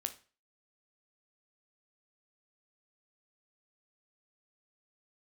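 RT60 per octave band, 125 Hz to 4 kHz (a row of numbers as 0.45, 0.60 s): 0.40, 0.35, 0.40, 0.35, 0.35, 0.35 s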